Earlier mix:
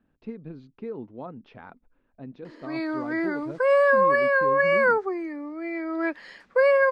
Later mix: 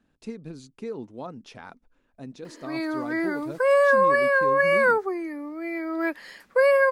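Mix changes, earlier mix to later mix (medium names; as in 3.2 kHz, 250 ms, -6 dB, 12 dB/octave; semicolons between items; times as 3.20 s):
speech: remove distance through air 320 m; master: remove distance through air 95 m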